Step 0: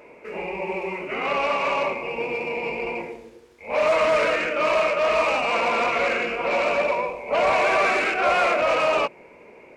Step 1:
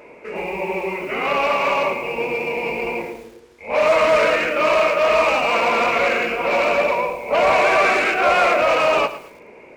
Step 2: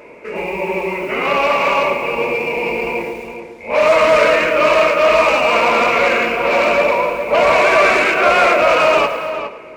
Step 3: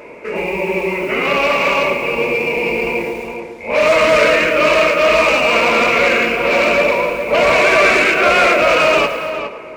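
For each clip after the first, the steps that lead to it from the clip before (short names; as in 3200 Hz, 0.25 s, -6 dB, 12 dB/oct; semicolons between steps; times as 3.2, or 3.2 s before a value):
lo-fi delay 0.11 s, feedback 35%, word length 7-bit, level -13 dB; gain +4 dB
notch 770 Hz, Q 12; on a send: darkening echo 0.411 s, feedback 16%, low-pass 2800 Hz, level -9 dB; on the sum: gain +4 dB
dynamic EQ 890 Hz, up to -7 dB, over -28 dBFS, Q 1.1; gain +3.5 dB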